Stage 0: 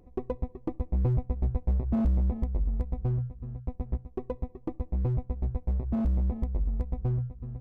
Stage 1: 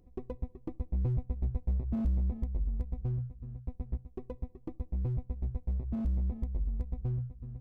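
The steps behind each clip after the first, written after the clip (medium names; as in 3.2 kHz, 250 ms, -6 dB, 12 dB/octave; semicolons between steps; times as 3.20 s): peaking EQ 840 Hz -6.5 dB 2.8 oct; trim -4 dB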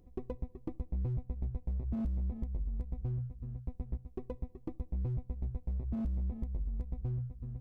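compression, threshold -33 dBFS, peak gain reduction 7.5 dB; trim +1 dB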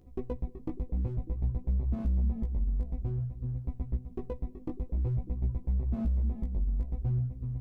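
repeats whose band climbs or falls 298 ms, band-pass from 210 Hz, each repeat 0.7 oct, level -11 dB; chorus 0.53 Hz, delay 15 ms, depth 4.8 ms; trim +7 dB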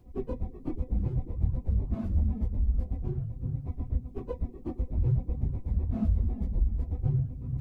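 phase randomisation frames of 50 ms; trim +2 dB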